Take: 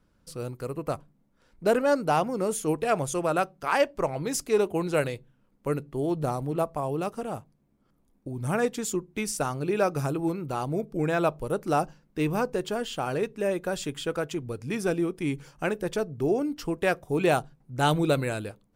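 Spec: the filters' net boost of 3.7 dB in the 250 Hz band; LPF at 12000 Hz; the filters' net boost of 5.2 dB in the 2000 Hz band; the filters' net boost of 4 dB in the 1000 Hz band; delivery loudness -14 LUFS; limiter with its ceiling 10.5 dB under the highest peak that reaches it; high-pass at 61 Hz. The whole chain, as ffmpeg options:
-af "highpass=61,lowpass=12k,equalizer=f=250:t=o:g=5,equalizer=f=1k:t=o:g=4,equalizer=f=2k:t=o:g=5.5,volume=13.5dB,alimiter=limit=-2dB:level=0:latency=1"

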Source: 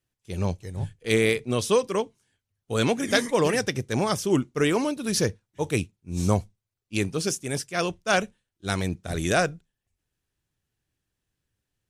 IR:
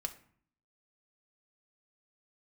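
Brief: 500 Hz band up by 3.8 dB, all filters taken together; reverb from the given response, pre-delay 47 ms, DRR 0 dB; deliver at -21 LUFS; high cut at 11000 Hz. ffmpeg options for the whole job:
-filter_complex "[0:a]lowpass=11k,equalizer=f=500:t=o:g=4.5,asplit=2[a][b];[1:a]atrim=start_sample=2205,adelay=47[c];[b][c]afir=irnorm=-1:irlink=0,volume=0.5dB[d];[a][d]amix=inputs=2:normalize=0"

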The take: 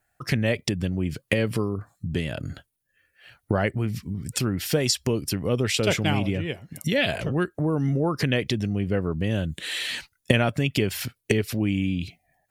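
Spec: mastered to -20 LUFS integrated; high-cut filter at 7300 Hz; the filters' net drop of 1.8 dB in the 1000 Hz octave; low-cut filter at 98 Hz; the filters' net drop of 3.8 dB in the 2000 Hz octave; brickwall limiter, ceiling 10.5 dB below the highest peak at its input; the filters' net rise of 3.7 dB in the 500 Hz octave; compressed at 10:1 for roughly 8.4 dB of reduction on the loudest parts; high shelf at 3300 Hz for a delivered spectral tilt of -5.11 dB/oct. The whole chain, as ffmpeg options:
-af "highpass=98,lowpass=7.3k,equalizer=f=500:t=o:g=5.5,equalizer=f=1k:t=o:g=-4.5,equalizer=f=2k:t=o:g=-6,highshelf=f=3.3k:g=5.5,acompressor=threshold=-23dB:ratio=10,volume=11dB,alimiter=limit=-8.5dB:level=0:latency=1"

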